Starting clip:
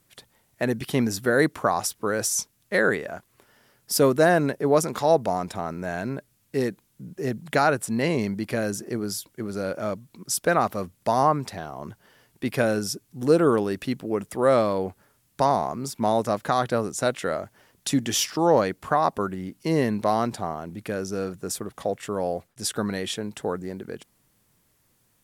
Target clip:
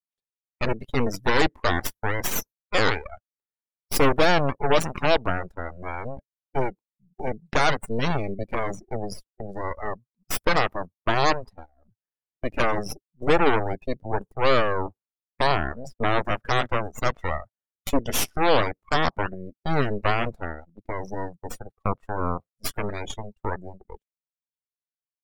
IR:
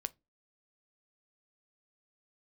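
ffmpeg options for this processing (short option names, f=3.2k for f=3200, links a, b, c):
-af "aeval=exprs='0.447*(cos(1*acos(clip(val(0)/0.447,-1,1)))-cos(1*PI/2))+0.0316*(cos(3*acos(clip(val(0)/0.447,-1,1)))-cos(3*PI/2))+0.00282*(cos(7*acos(clip(val(0)/0.447,-1,1)))-cos(7*PI/2))+0.158*(cos(8*acos(clip(val(0)/0.447,-1,1)))-cos(8*PI/2))':c=same,afftdn=nr=28:nf=-29,agate=range=-14dB:threshold=-36dB:ratio=16:detection=peak,volume=-3dB"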